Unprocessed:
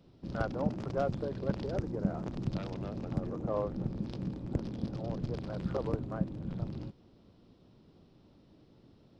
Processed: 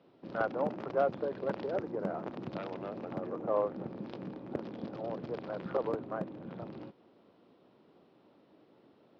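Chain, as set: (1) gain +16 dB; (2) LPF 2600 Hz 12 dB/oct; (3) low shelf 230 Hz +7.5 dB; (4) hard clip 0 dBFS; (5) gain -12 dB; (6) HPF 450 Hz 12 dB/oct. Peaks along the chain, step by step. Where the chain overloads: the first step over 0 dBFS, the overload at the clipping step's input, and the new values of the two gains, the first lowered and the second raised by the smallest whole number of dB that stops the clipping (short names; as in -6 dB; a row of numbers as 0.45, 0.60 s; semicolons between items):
-0.5, -0.5, +4.5, 0.0, -12.0, -17.0 dBFS; step 3, 4.5 dB; step 1 +11 dB, step 5 -7 dB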